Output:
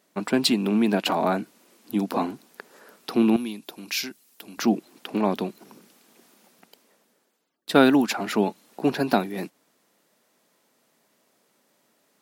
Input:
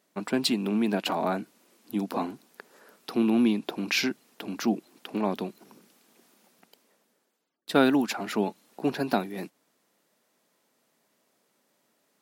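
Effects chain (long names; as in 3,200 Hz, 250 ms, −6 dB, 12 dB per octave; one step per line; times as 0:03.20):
0:03.36–0:04.58: first-order pre-emphasis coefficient 0.8
level +4.5 dB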